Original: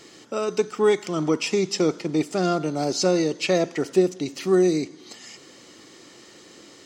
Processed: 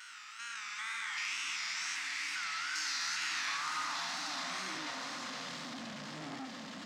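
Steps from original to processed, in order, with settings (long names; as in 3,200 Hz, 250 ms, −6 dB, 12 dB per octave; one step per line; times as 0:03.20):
spectrum averaged block by block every 400 ms
source passing by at 0:02.79, 8 m/s, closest 8.3 metres
elliptic band-stop filter 270–880 Hz, stop band 40 dB
downward compressor 3 to 1, threshold −40 dBFS, peak gain reduction 9 dB
delay with pitch and tempo change per echo 676 ms, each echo −3 semitones, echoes 3, each echo −6 dB
tape wow and flutter 120 cents
high-pass filter sweep 1,900 Hz → 310 Hz, 0:02.71–0:05.83
echo that builds up and dies away 92 ms, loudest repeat 8, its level −16 dB
on a send at −4 dB: convolution reverb RT60 0.15 s, pre-delay 84 ms
on the sum: saturating transformer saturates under 2,800 Hz
level +5 dB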